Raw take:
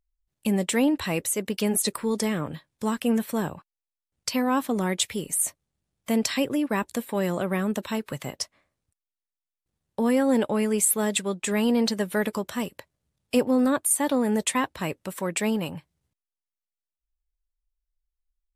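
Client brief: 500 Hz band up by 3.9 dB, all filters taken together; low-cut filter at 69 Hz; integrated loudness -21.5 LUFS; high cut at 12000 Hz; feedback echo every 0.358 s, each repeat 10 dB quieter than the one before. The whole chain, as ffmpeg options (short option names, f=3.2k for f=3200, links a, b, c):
-af "highpass=69,lowpass=12k,equalizer=f=500:t=o:g=4.5,aecho=1:1:358|716|1074|1432:0.316|0.101|0.0324|0.0104,volume=2.5dB"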